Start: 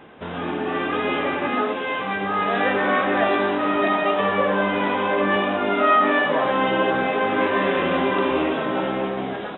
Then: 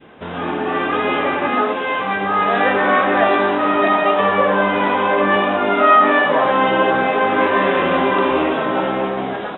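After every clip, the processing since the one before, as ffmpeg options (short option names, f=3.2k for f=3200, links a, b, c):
-af "adynamicequalizer=threshold=0.0224:dfrequency=980:dqfactor=0.71:tfrequency=980:tqfactor=0.71:attack=5:release=100:ratio=0.375:range=2:mode=boostabove:tftype=bell,volume=2.5dB"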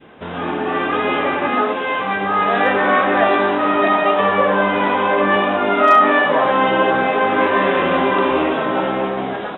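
-af "asoftclip=type=hard:threshold=-3dB"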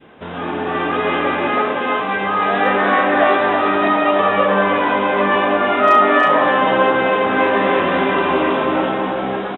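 -af "aecho=1:1:321:0.631,volume=-1dB"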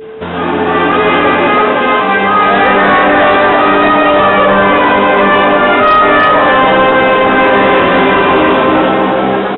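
-af "apsyclip=12.5dB,aresample=11025,aresample=44100,aeval=exprs='val(0)+0.0794*sin(2*PI*440*n/s)':c=same,volume=-2.5dB"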